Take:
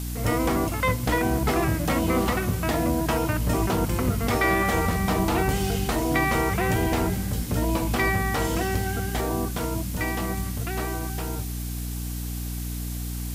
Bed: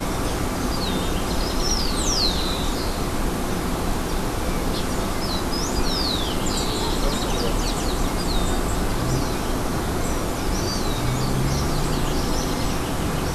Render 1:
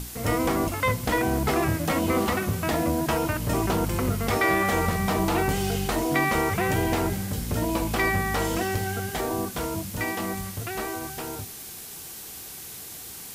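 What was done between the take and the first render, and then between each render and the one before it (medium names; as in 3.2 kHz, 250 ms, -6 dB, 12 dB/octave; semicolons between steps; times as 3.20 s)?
hum notches 60/120/180/240/300 Hz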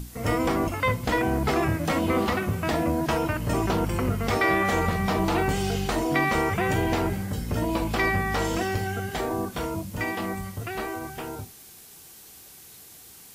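noise print and reduce 8 dB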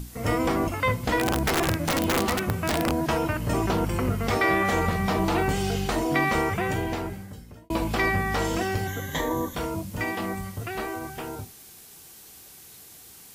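1.19–2.92 s: integer overflow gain 16 dB; 6.37–7.70 s: fade out; 8.87–9.55 s: rippled EQ curve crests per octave 1.1, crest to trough 15 dB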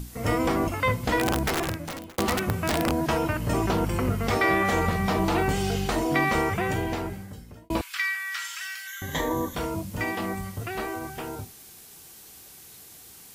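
1.32–2.18 s: fade out; 7.81–9.02 s: steep high-pass 1.4 kHz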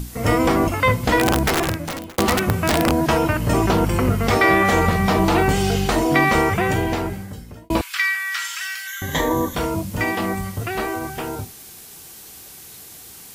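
trim +7 dB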